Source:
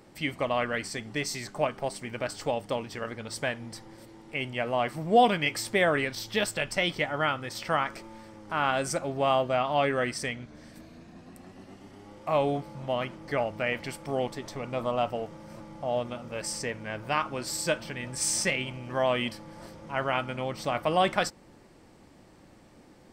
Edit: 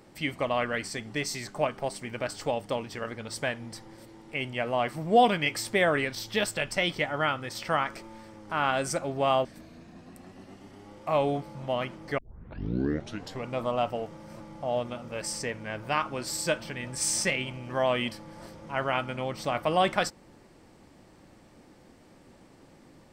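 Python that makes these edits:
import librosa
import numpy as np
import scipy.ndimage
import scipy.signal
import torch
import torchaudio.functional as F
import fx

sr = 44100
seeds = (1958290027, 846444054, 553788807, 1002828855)

y = fx.edit(x, sr, fx.cut(start_s=9.45, length_s=1.2),
    fx.tape_start(start_s=13.38, length_s=1.26), tone=tone)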